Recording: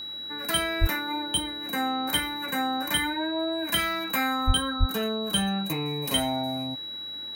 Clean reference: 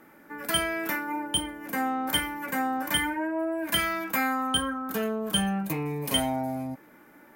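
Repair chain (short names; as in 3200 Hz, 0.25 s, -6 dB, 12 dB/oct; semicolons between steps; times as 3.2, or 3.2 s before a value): de-hum 115.3 Hz, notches 5; notch 3900 Hz, Q 30; 0.8–0.92 HPF 140 Hz 24 dB/oct; 4.46–4.58 HPF 140 Hz 24 dB/oct; 4.79–4.91 HPF 140 Hz 24 dB/oct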